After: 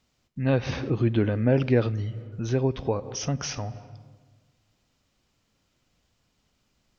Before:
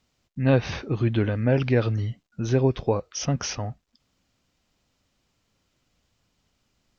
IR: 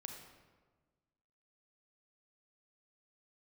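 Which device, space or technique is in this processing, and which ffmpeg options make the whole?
ducked reverb: -filter_complex "[0:a]asplit=3[s0][s1][s2];[1:a]atrim=start_sample=2205[s3];[s1][s3]afir=irnorm=-1:irlink=0[s4];[s2]apad=whole_len=308195[s5];[s4][s5]sidechaincompress=threshold=0.0178:ratio=8:attack=16:release=119,volume=1.06[s6];[s0][s6]amix=inputs=2:normalize=0,asettb=1/sr,asplit=3[s7][s8][s9];[s7]atrim=end=0.674[s10];[s8]atrim=start=0.67:end=1.87,asetpts=PTS-STARTPTS,afade=t=in:d=0.004:c=qsin,afade=t=out:st=1.196:d=0.004:c=qsin,equalizer=f=300:t=o:w=2.5:g=4.5[s11];[s9]atrim=start=1.866[s12];[s10][s11]acrossfade=d=0.004:c1=hsin:c2=qsin[s13];[s13][s12]acrossfade=d=0.004:c1=qsin:c2=hsin,volume=0.631"

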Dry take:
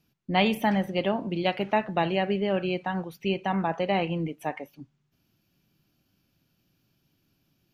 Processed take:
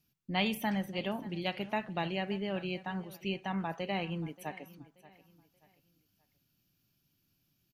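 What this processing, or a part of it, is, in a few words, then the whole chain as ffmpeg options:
smiley-face EQ: -af "lowshelf=f=170:g=-4.5,lowshelf=f=200:g=6,equalizer=f=510:t=o:w=2.1:g=-4.5,highshelf=f=5700:g=9,aecho=1:1:581|1162|1743:0.112|0.0393|0.0137,volume=0.447"

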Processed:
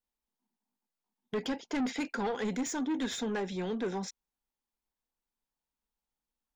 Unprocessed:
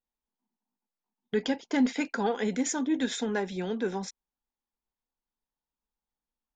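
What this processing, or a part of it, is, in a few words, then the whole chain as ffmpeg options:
saturation between pre-emphasis and de-emphasis: -af "highshelf=f=5100:g=11,asoftclip=type=tanh:threshold=0.0422,highshelf=f=5100:g=-11"

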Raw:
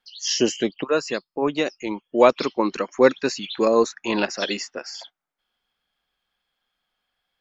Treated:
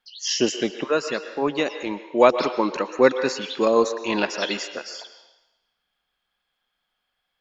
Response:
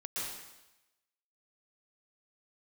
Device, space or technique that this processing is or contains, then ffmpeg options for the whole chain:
filtered reverb send: -filter_complex "[0:a]asplit=2[s0][s1];[s1]highpass=470,lowpass=4400[s2];[1:a]atrim=start_sample=2205[s3];[s2][s3]afir=irnorm=-1:irlink=0,volume=0.335[s4];[s0][s4]amix=inputs=2:normalize=0,volume=0.891"

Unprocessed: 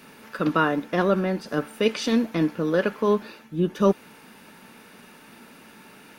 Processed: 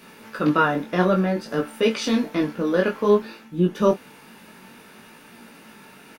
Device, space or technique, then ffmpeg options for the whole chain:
double-tracked vocal: -filter_complex "[0:a]asplit=2[s0][s1];[s1]adelay=27,volume=0.251[s2];[s0][s2]amix=inputs=2:normalize=0,flanger=delay=17:depth=5.2:speed=0.56,volume=1.68"

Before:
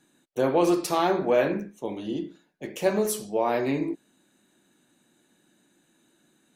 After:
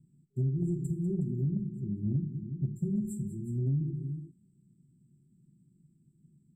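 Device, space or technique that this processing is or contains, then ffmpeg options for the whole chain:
jukebox: -filter_complex "[0:a]asplit=3[s0][s1][s2];[s0]afade=t=out:st=2.03:d=0.02[s3];[s1]equalizer=f=75:w=0.3:g=7.5,afade=t=in:st=2.03:d=0.02,afade=t=out:st=2.78:d=0.02[s4];[s2]afade=t=in:st=2.78:d=0.02[s5];[s3][s4][s5]amix=inputs=3:normalize=0,aecho=1:1:195|365:0.188|0.178,afftfilt=real='re*(1-between(b*sr/4096,400,7200))':imag='im*(1-between(b*sr/4096,400,7200))':win_size=4096:overlap=0.75,lowpass=6200,lowshelf=f=210:t=q:w=3:g=13,acompressor=threshold=0.0708:ratio=4,superequalizer=8b=2:10b=0.631:16b=0.398,volume=0.596"

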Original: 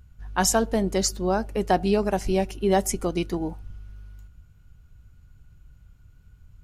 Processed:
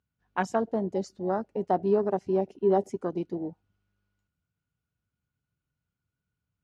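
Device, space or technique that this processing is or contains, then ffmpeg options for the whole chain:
over-cleaned archive recording: -filter_complex "[0:a]asettb=1/sr,asplit=3[s0][s1][s2];[s0]atrim=end=1.774[s3];[s1]atrim=start=1.77:end=3.04,asetpts=PTS-STARTPTS,afade=t=in:d=0.004:c=qsin,afade=t=out:st=1.266:d=0.004:c=qsin,equalizer=f=400:t=o:w=0.22:g=5.5[s4];[s2]atrim=start=3.036[s5];[s3][s4]acrossfade=d=0.004:c1=hsin:c2=qsin[s6];[s6][s5]acrossfade=d=0.004:c1=qsin:c2=hsin,highpass=170,lowpass=6000,afwtdn=0.0355,volume=0.631"

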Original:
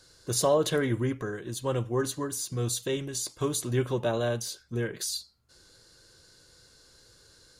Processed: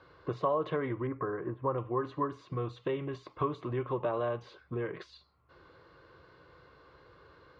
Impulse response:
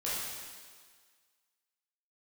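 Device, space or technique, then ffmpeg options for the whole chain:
bass amplifier: -filter_complex "[0:a]acompressor=threshold=0.0158:ratio=4,highpass=73,equalizer=f=110:t=q:w=4:g=-7,equalizer=f=220:t=q:w=4:g=-10,equalizer=f=1100:t=q:w=4:g=10,equalizer=f=1600:t=q:w=4:g=-6,lowpass=f=2400:w=0.5412,lowpass=f=2400:w=1.3066,asettb=1/sr,asplit=3[s0][s1][s2];[s0]atrim=end=1.074[s3];[s1]atrim=start=1.07:end=1.78,asetpts=PTS-STARTPTS,afade=t=in:d=0.004:c=qsin,afade=t=out:st=0.706:d=0.004:c=qsin,lowpass=f=1800:w=0.5412,lowpass=f=1800:w=1.3066[s4];[s2]atrim=start=1.776[s5];[s3][s4]acrossfade=d=0.004:c1=hsin:c2=qsin[s6];[s6][s5]acrossfade=d=0.004:c1=qsin:c2=hsin,volume=2"

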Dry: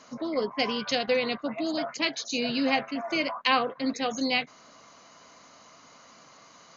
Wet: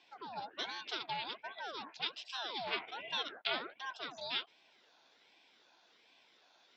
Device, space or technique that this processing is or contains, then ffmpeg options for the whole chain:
voice changer toy: -filter_complex "[0:a]asettb=1/sr,asplit=3[s0][s1][s2];[s0]atrim=end=2.674[s3];[s1]atrim=start=2.67:end=3.23,asetpts=PTS-STARTPTS,afade=t=in:d=0.004:c=qsin,afade=t=out:st=0.556:d=0.004:c=qsin,equalizer=f=1500:w=3.1:g=13.5[s4];[s2]atrim=start=3.226[s5];[s3][s4]acrossfade=d=0.004:c1=hsin:c2=qsin[s6];[s6][s5]acrossfade=d=0.004:c1=qsin:c2=hsin,aeval=exprs='val(0)*sin(2*PI*840*n/s+840*0.6/1.3*sin(2*PI*1.3*n/s))':c=same,highpass=430,equalizer=f=570:t=q:w=4:g=-5,equalizer=f=1200:t=q:w=4:g=-7,equalizer=f=1800:t=q:w=4:g=-7,equalizer=f=3600:t=q:w=4:g=6,lowpass=f=4700:w=0.5412,lowpass=f=4700:w=1.3066,volume=0.398"

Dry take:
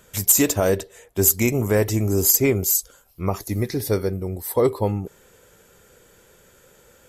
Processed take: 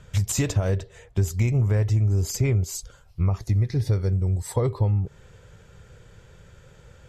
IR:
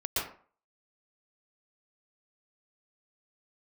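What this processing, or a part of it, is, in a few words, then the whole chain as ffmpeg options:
jukebox: -filter_complex "[0:a]lowpass=5100,lowshelf=f=180:t=q:w=1.5:g=11.5,acompressor=threshold=0.1:ratio=4,asettb=1/sr,asplit=3[s0][s1][s2];[s0]atrim=end=4.034[s3];[s1]atrim=start=4.03:end=4.56,asetpts=PTS-STARTPTS,afade=t=in:d=0.004:c=qsin,afade=t=out:st=0.526:d=0.004:c=qsin,equalizer=f=7600:w=1.9:g=13.5[s4];[s2]atrim=start=4.556[s5];[s3][s4]acrossfade=d=0.004:c1=hsin:c2=qsin[s6];[s6][s5]acrossfade=d=0.004:c1=qsin:c2=hsin"

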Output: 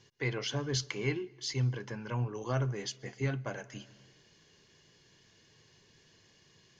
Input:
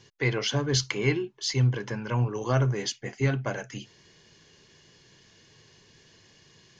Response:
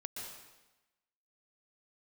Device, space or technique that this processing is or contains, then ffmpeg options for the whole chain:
compressed reverb return: -filter_complex "[0:a]asplit=2[s0][s1];[1:a]atrim=start_sample=2205[s2];[s1][s2]afir=irnorm=-1:irlink=0,acompressor=threshold=0.0141:ratio=6,volume=0.355[s3];[s0][s3]amix=inputs=2:normalize=0,volume=0.398"

